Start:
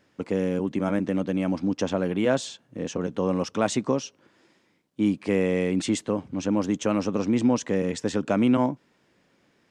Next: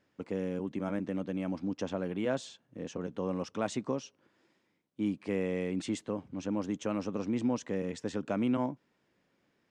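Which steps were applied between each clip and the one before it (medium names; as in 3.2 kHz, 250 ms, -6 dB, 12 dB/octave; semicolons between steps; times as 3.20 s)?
treble shelf 5.4 kHz -4.5 dB; trim -9 dB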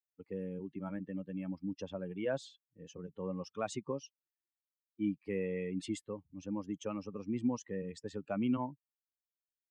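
expander on every frequency bin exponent 2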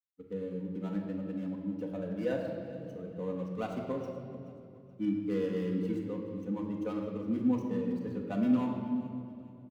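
median filter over 25 samples; feedback delay 427 ms, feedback 38%, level -18 dB; reverberation RT60 2.4 s, pre-delay 4 ms, DRR -1 dB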